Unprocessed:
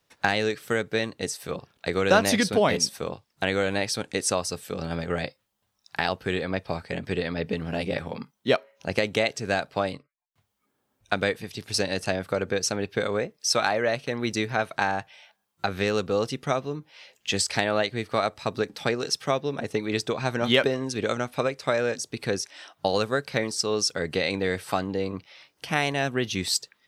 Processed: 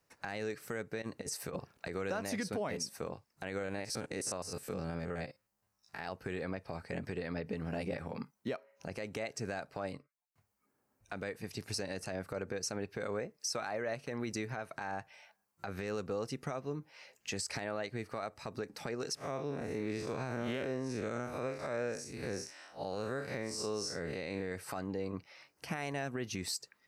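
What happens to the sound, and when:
1.02–1.86 s: compressor with a negative ratio -33 dBFS, ratio -0.5
3.59–6.03 s: spectrogram pixelated in time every 50 ms
19.15–24.52 s: spectral blur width 118 ms
whole clip: peaking EQ 3.4 kHz -12 dB 0.48 oct; compression 3:1, threshold -30 dBFS; peak limiter -23.5 dBFS; trim -3.5 dB

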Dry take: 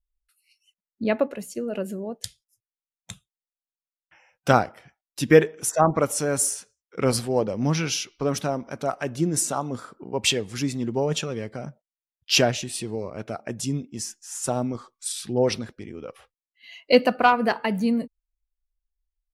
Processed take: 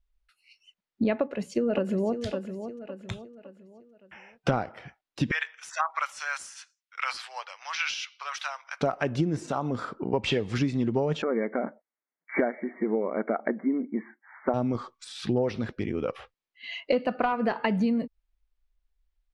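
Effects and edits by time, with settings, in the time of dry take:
1.13–2.22 s: echo throw 560 ms, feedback 40%, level -12.5 dB
5.31–8.81 s: Bessel high-pass 1.7 kHz, order 6
9.46–9.91 s: compression 2:1, threshold -37 dBFS
11.22–14.54 s: brick-wall FIR band-pass 190–2300 Hz
whole clip: de-esser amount 80%; low-pass 3.9 kHz 12 dB/octave; compression 12:1, threshold -30 dBFS; trim +8 dB

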